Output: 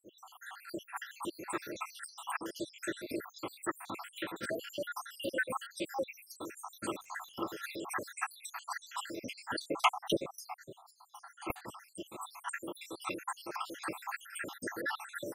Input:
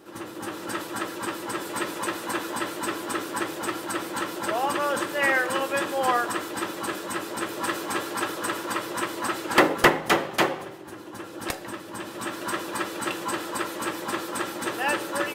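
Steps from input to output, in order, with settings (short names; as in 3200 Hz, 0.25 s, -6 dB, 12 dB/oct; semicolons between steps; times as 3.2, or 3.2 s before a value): random spectral dropouts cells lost 79%; 6.99–7.68 crackle 230/s -> 54/s -46 dBFS; gain -5 dB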